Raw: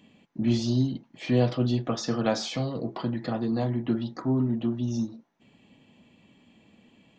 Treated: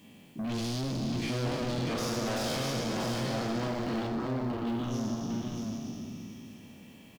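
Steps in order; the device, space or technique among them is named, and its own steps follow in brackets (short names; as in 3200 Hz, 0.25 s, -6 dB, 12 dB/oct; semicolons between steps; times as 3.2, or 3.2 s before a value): spectral trails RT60 2.76 s; open-reel tape (soft clip -31.5 dBFS, distortion -5 dB; bell 89 Hz +2.5 dB 0.94 oct; white noise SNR 33 dB); 4.07–4.67 Chebyshev low-pass 1100 Hz, order 2; echo 0.634 s -4.5 dB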